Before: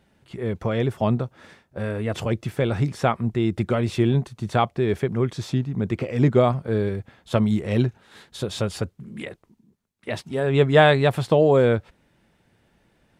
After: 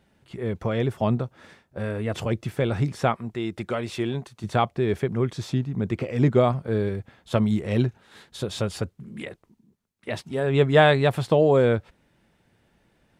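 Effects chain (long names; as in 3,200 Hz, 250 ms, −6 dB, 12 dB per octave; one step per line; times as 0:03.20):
0:03.15–0:04.44: low-shelf EQ 280 Hz −11 dB
level −1.5 dB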